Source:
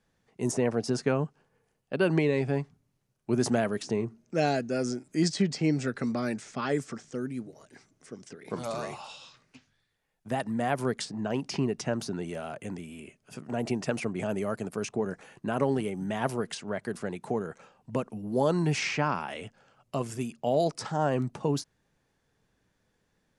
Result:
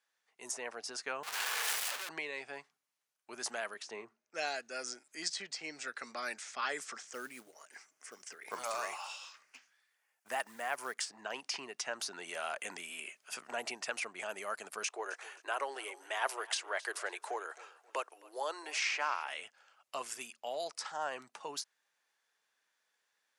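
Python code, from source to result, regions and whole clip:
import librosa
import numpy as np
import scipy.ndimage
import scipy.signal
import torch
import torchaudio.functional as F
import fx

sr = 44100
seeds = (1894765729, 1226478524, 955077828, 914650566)

y = fx.chain(x, sr, fx.clip_1bit(),
    fx.low_shelf(hz=420.0, db=-12.0),
    fx.band_widen(depth_pct=40), at=(1.23, 2.09))
y = fx.chain(y, sr, fx.high_shelf(hz=3800.0, db=-9.5),
    fx.band_widen(depth_pct=40), at=(3.74, 4.34))
y = fx.chain(y, sr, fx.peak_eq(hz=3800.0, db=-9.5, octaves=0.46),
    fx.quant_float(bits=4), at=(7.07, 11.1))
y = fx.chain(y, sr, fx.ellip_highpass(hz=310.0, order=4, stop_db=40),
    fx.echo_feedback(ms=266, feedback_pct=33, wet_db=-20.0), at=(14.83, 19.29))
y = fx.rider(y, sr, range_db=10, speed_s=0.5)
y = scipy.signal.sosfilt(scipy.signal.butter(2, 1100.0, 'highpass', fs=sr, output='sos'), y)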